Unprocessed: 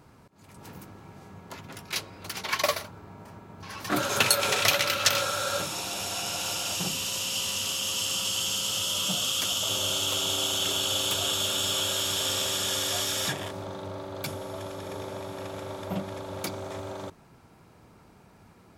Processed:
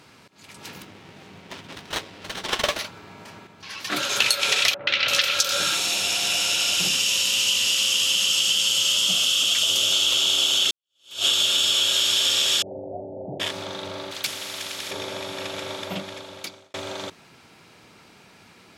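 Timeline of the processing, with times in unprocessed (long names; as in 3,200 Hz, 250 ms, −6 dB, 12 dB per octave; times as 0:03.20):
0:00.82–0:02.79: windowed peak hold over 17 samples
0:03.47–0:04.22: clip gain −6 dB
0:04.74–0:09.92: three-band delay without the direct sound lows, mids, highs 130/340 ms, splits 1,000/4,300 Hz
0:10.71–0:11.27: fade in exponential
0:12.62–0:13.40: Butterworth low-pass 780 Hz 72 dB per octave
0:14.11–0:14.91: every bin compressed towards the loudest bin 2 to 1
0:15.73–0:16.74: fade out
whole clip: meter weighting curve D; downward compressor 6 to 1, threshold −21 dBFS; level +3.5 dB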